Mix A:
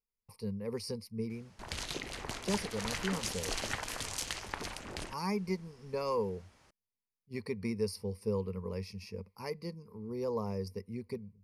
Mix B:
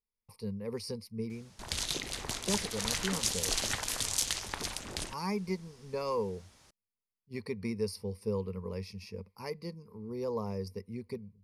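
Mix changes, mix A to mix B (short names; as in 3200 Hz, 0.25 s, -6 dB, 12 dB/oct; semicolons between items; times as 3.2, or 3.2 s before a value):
background: add tone controls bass +2 dB, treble +9 dB; master: add bell 3600 Hz +4 dB 0.3 oct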